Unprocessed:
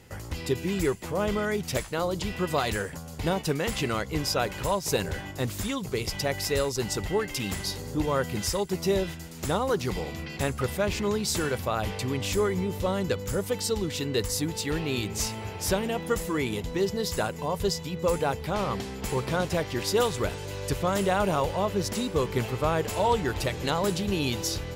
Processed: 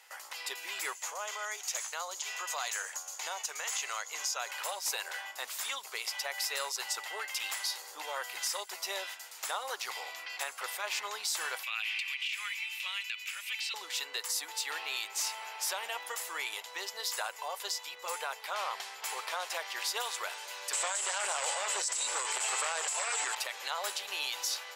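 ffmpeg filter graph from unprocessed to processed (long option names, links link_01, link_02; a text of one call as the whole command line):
ffmpeg -i in.wav -filter_complex "[0:a]asettb=1/sr,asplit=3[link_01][link_02][link_03];[link_01]atrim=end=0.954[link_04];[link_02]atrim=start=0.95:end=4.51,asetpts=PTS-STARTPTS,afade=type=in:duration=0.004:curve=qsin,afade=type=out:start_time=3.556:duration=0.004:curve=qsin,highpass=frequency=310:width=0.5412,highpass=frequency=310:width=1.3066,equalizer=frequency=6600:width_type=o:width=0.32:gain=15,acompressor=threshold=-30dB:ratio=2.5:attack=3.2:release=140:knee=1:detection=peak[link_05];[link_03]atrim=start=4.506[link_06];[link_04][link_05]acrossfade=duration=0.004:curve1=hsin:curve2=qsin[link_07];[link_07][link_06]acrossfade=duration=0.004:curve1=qsin:curve2=hsin,asettb=1/sr,asplit=3[link_08][link_09][link_10];[link_08]atrim=end=11.634[link_11];[link_09]atrim=start=11.63:end=13.74,asetpts=PTS-STARTPTS,afade=type=in:duration=0.004:curve=qsin,afade=type=out:start_time=2.106:duration=0.004:curve=qsin,highpass=frequency=2500:width_type=q:width=7.8,acrossover=split=3800[link_12][link_13];[link_13]acompressor=threshold=-44dB:ratio=4:attack=1:release=60[link_14];[link_12][link_14]amix=inputs=2:normalize=0[link_15];[link_10]atrim=start=13.736[link_16];[link_11][link_15]acrossfade=duration=0.004:curve1=hsin:curve2=qsin[link_17];[link_17][link_16]acrossfade=duration=0.004:curve1=qsin:curve2=hsin,asettb=1/sr,asplit=3[link_18][link_19][link_20];[link_18]atrim=end=20.734[link_21];[link_19]atrim=start=20.73:end=23.35,asetpts=PTS-STARTPTS,afade=type=in:duration=0.004:curve=qsin,afade=type=out:start_time=2.616:duration=0.004:curve=qsin,aeval=exprs='0.251*sin(PI/2*2.51*val(0)/0.251)':channel_layout=same,lowpass=frequency=7900:width_type=q:width=14[link_22];[link_20]atrim=start=23.346[link_23];[link_21][link_22]acrossfade=duration=0.004:curve1=hsin:curve2=qsin[link_24];[link_24][link_23]acrossfade=duration=0.004:curve1=qsin:curve2=hsin,highpass=frequency=800:width=0.5412,highpass=frequency=800:width=1.3066,alimiter=limit=-22.5dB:level=0:latency=1:release=66,afftfilt=real='re*lt(hypot(re,im),0.141)':imag='im*lt(hypot(re,im),0.141)':win_size=1024:overlap=0.75" out.wav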